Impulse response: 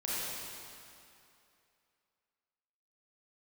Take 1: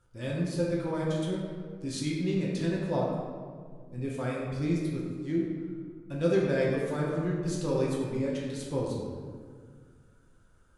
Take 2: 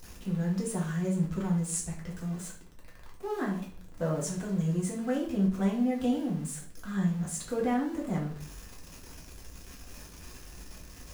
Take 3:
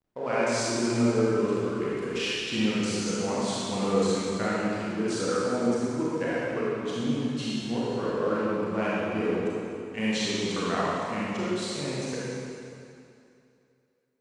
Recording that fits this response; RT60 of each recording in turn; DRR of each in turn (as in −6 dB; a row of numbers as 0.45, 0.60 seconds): 3; 1.9, 0.45, 2.6 seconds; −5.0, −3.5, −8.5 decibels